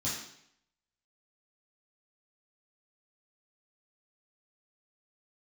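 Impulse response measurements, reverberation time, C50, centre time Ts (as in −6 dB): 0.70 s, 2.5 dB, 50 ms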